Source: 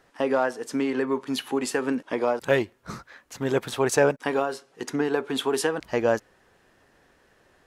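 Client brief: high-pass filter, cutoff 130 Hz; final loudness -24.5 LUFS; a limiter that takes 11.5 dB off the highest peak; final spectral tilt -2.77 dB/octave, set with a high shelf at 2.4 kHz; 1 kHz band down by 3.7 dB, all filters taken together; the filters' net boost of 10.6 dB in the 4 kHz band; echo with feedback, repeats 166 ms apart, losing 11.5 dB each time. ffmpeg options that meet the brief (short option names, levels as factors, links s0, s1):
-af "highpass=130,equalizer=f=1000:t=o:g=-7,highshelf=f=2400:g=8,equalizer=f=4000:t=o:g=7,alimiter=limit=0.158:level=0:latency=1,aecho=1:1:166|332|498:0.266|0.0718|0.0194,volume=1.5"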